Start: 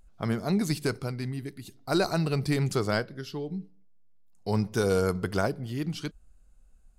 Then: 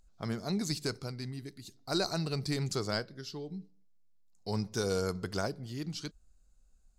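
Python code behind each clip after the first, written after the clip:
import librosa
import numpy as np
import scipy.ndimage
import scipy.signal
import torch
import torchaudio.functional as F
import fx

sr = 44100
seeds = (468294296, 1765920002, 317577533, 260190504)

y = fx.band_shelf(x, sr, hz=5400.0, db=8.0, octaves=1.2)
y = y * 10.0 ** (-7.0 / 20.0)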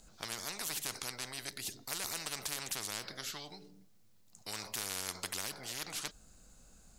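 y = fx.spectral_comp(x, sr, ratio=10.0)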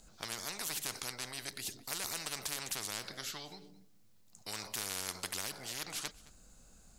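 y = x + 10.0 ** (-21.5 / 20.0) * np.pad(x, (int(217 * sr / 1000.0), 0))[:len(x)]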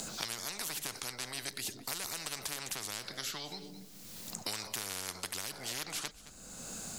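y = fx.band_squash(x, sr, depth_pct=100)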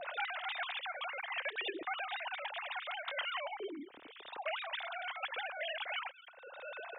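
y = fx.sine_speech(x, sr)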